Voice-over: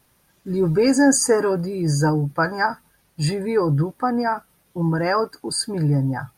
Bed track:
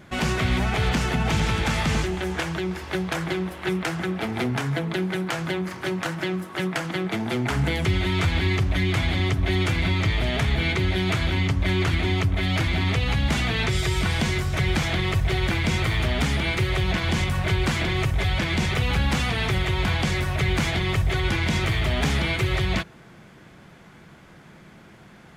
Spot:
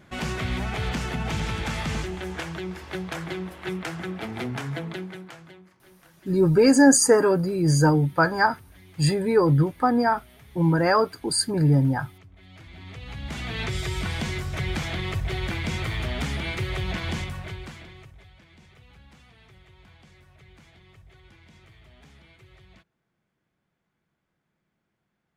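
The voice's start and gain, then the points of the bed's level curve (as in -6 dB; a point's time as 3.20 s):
5.80 s, +0.5 dB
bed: 4.87 s -5.5 dB
5.83 s -28.5 dB
12.36 s -28.5 dB
13.62 s -5.5 dB
17.12 s -5.5 dB
18.34 s -30 dB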